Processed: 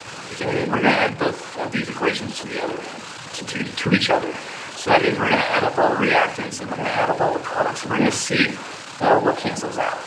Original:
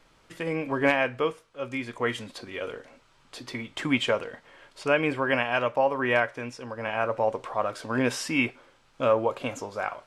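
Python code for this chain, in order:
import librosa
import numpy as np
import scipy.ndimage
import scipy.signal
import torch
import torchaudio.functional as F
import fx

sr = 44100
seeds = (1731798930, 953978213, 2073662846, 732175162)

y = x + 0.5 * 10.0 ** (-33.5 / 20.0) * np.sign(x)
y = fx.hum_notches(y, sr, base_hz=60, count=9)
y = fx.noise_vocoder(y, sr, seeds[0], bands=8)
y = F.gain(torch.from_numpy(y), 6.5).numpy()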